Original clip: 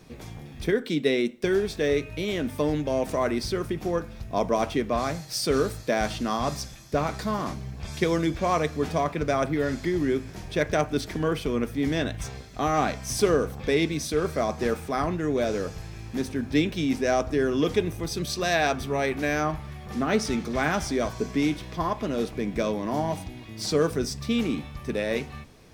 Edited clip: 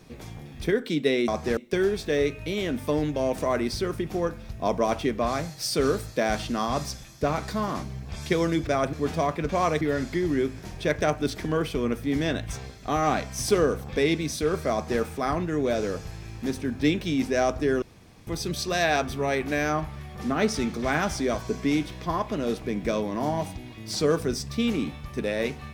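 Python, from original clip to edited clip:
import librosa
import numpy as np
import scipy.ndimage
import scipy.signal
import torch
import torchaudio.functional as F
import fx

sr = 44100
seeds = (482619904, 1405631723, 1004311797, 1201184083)

y = fx.edit(x, sr, fx.swap(start_s=8.38, length_s=0.32, other_s=9.26, other_length_s=0.26),
    fx.duplicate(start_s=14.43, length_s=0.29, to_s=1.28),
    fx.room_tone_fill(start_s=17.53, length_s=0.45), tone=tone)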